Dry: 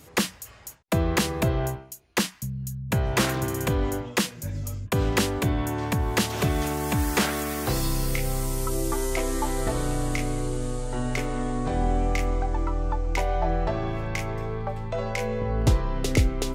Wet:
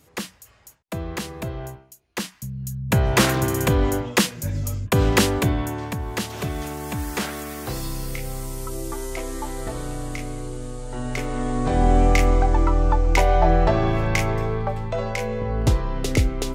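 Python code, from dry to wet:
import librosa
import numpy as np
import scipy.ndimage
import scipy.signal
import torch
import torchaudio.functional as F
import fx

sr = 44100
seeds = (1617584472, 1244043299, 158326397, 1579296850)

y = fx.gain(x, sr, db=fx.line((2.05, -6.5), (2.9, 5.5), (5.34, 5.5), (5.97, -3.5), (10.75, -3.5), (12.0, 8.0), (14.22, 8.0), (15.25, 1.5)))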